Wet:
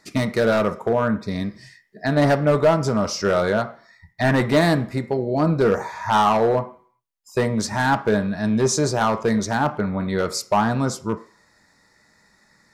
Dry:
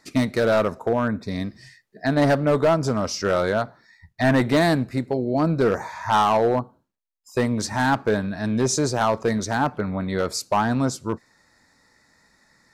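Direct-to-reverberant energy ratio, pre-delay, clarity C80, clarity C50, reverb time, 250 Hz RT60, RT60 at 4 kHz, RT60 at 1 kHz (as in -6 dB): 8.5 dB, 3 ms, 19.0 dB, 15.0 dB, 0.50 s, 0.40 s, 0.60 s, 0.55 s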